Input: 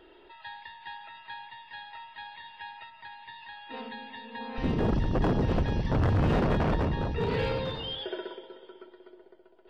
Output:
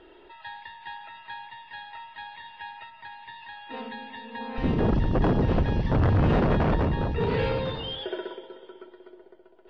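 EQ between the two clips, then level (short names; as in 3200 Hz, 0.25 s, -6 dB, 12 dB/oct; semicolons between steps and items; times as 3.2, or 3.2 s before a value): air absorption 120 m; +3.5 dB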